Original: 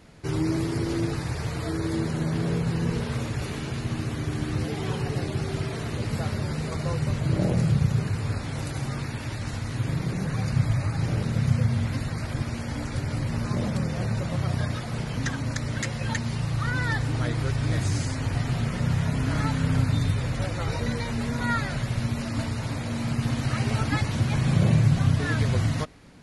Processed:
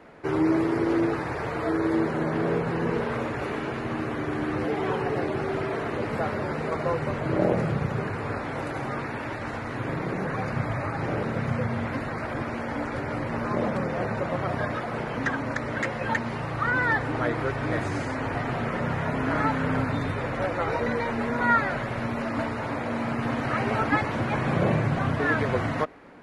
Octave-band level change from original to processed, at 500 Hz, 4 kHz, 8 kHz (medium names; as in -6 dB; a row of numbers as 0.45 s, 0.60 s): +7.0 dB, -5.5 dB, -11.5 dB